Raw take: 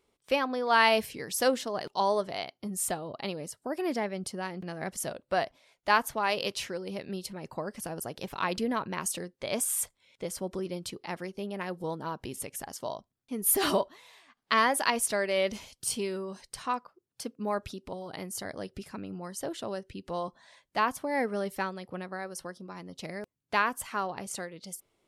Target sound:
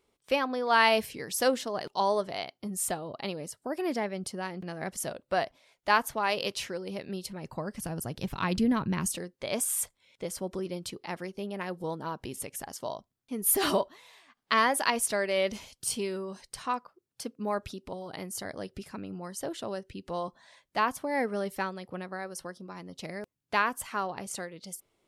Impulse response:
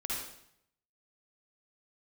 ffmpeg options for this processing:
-filter_complex "[0:a]asettb=1/sr,asplit=3[link_01][link_02][link_03];[link_01]atrim=end=7.164[link_04];[link_02]atrim=start=7.16:end=9.16,asetpts=PTS-STARTPTS,afade=type=in:duration=0.004:curve=qsin,afade=type=out:start_time=1.996:duration=0.004:curve=qsin,asubboost=boost=9:cutoff=240[link_05];[link_03]atrim=start=9.156[link_06];[link_04][link_05]acrossfade=duration=0.004:curve1=hsin:curve2=qsin[link_07];[link_07][link_06]acrossfade=duration=0.004:curve1=qsin:curve2=hsin"

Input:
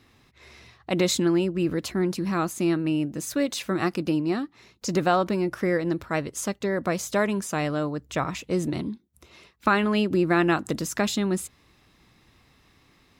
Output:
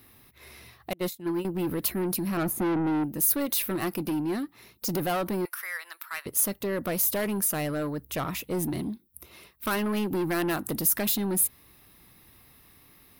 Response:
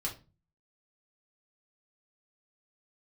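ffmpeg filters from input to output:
-filter_complex "[0:a]asettb=1/sr,asplit=3[link_01][link_02][link_03];[link_01]atrim=end=0.934[link_04];[link_02]atrim=start=0.93:end=1.45,asetpts=PTS-STARTPTS,afade=type=in:duration=0.004:curve=qsin,afade=type=out:start_time=0.516:duration=0.004:curve=qsin,agate=range=-33dB:threshold=-20dB:ratio=16:detection=peak[link_05];[link_03]atrim=start=1.446[link_06];[link_04][link_05]acrossfade=duration=0.004:curve1=hsin:curve2=qsin[link_07];[link_07][link_06]acrossfade=duration=0.004:curve1=qsin:curve2=hsin,asettb=1/sr,asplit=3[link_08][link_09][link_10];[link_08]atrim=end=2.374[link_11];[link_09]atrim=start=2.37:end=3.04,asetpts=PTS-STARTPTS,afade=type=in:duration=0.004:curve=qsin,afade=type=out:start_time=0.666:duration=0.004:curve=qsin,tiltshelf=frequency=1400:gain=9[link_12];[link_10]atrim=start=3.036[link_13];[link_11][link_12]acrossfade=duration=0.004:curve1=hsin:curve2=qsin[link_14];[link_14][link_13]acrossfade=duration=0.004:curve1=qsin:curve2=hsin,asettb=1/sr,asplit=3[link_15][link_16][link_17];[link_15]atrim=end=5.454[link_18];[link_16]atrim=start=5.45:end=6.26,asetpts=PTS-STARTPTS,afade=type=in:duration=0.004:curve=qsin,afade=type=out:start_time=0.806:duration=0.004:curve=qsin,highpass=frequency=1100:width=0.5412,highpass=frequency=1100:width=1.3066[link_19];[link_17]atrim=start=6.256[link_20];[link_18][link_19]acrossfade=duration=0.004:curve1=hsin:curve2=qsin[link_21];[link_21][link_20]acrossfade=duration=0.004:curve1=qsin:curve2=hsin,asoftclip=type=tanh:threshold=-24dB,aexciter=amount=10.7:drive=5.6:freq=10000"

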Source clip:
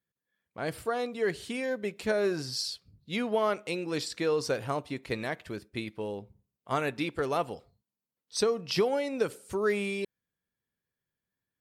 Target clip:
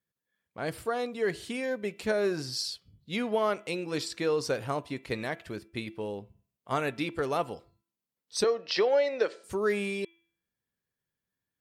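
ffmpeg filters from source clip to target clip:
ffmpeg -i in.wav -filter_complex "[0:a]asettb=1/sr,asplit=3[link_01][link_02][link_03];[link_01]atrim=end=8.444[link_04];[link_02]atrim=start=8.44:end=9.44,asetpts=PTS-STARTPTS,afade=type=in:duration=0.004:curve=qsin,afade=type=out:start_time=0.996:duration=0.004:curve=qsin,highpass=frequency=260:width=0.5412,highpass=frequency=260:width=1.3066,equalizer=frequency=270:width_type=q:width=4:gain=-8,equalizer=frequency=570:width_type=q:width=4:gain=7,equalizer=frequency=1800:width_type=q:width=4:gain=8,equalizer=frequency=4100:width_type=q:width=4:gain=5,lowpass=frequency=5800:width=0.5412,lowpass=frequency=5800:width=1.3066[link_05];[link_03]atrim=start=9.436[link_06];[link_04][link_05]acrossfade=duration=0.004:curve1=hsin:curve2=qsin[link_07];[link_07][link_06]acrossfade=duration=0.004:curve1=qsin:curve2=hsin,bandreject=frequency=335.1:width_type=h:width=4,bandreject=frequency=670.2:width_type=h:width=4,bandreject=frequency=1005.3:width_type=h:width=4,bandreject=frequency=1340.4:width_type=h:width=4,bandreject=frequency=1675.5:width_type=h:width=4,bandreject=frequency=2010.6:width_type=h:width=4,bandreject=frequency=2345.7:width_type=h:width=4,bandreject=frequency=2680.8:width_type=h:width=4,bandreject=frequency=3015.9:width_type=h:width=4,bandreject=frequency=3351:width_type=h:width=4" out.wav

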